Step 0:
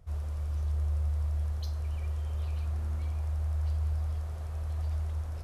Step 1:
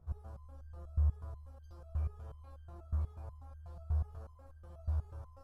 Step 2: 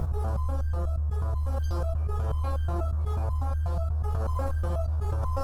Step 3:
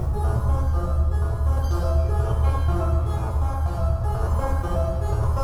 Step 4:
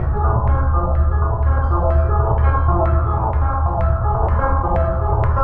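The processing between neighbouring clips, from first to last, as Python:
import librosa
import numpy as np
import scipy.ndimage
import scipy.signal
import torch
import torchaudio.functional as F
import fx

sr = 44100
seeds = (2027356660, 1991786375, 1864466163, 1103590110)

y1 = fx.high_shelf_res(x, sr, hz=1700.0, db=-10.0, q=1.5)
y1 = fx.notch(y1, sr, hz=2000.0, q=7.0)
y1 = fx.resonator_held(y1, sr, hz=8.2, low_hz=71.0, high_hz=1600.0)
y1 = y1 * 10.0 ** (4.5 / 20.0)
y2 = fx.env_flatten(y1, sr, amount_pct=100)
y3 = fx.rev_fdn(y2, sr, rt60_s=1.7, lf_ratio=1.25, hf_ratio=0.9, size_ms=49.0, drr_db=-3.0)
y3 = y3 * 10.0 ** (3.0 / 20.0)
y4 = fx.filter_lfo_lowpass(y3, sr, shape='saw_down', hz=2.1, low_hz=830.0, high_hz=2000.0, q=3.4)
y4 = y4 * 10.0 ** (5.0 / 20.0)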